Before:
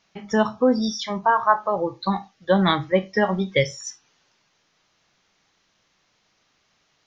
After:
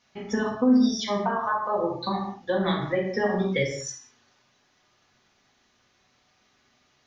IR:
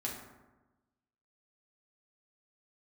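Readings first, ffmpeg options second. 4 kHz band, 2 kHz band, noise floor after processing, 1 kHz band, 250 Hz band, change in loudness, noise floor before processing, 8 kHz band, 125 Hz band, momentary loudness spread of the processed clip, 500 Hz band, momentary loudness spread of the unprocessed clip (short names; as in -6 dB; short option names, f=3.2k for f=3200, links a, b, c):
-4.5 dB, -5.0 dB, -67 dBFS, -6.5 dB, -0.5 dB, -3.5 dB, -68 dBFS, n/a, -4.5 dB, 10 LU, -4.5 dB, 8 LU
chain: -filter_complex "[0:a]acompressor=threshold=-22dB:ratio=10[a];[1:a]atrim=start_sample=2205,afade=t=out:st=0.27:d=0.01,atrim=end_sample=12348[b];[a][b]afir=irnorm=-1:irlink=0"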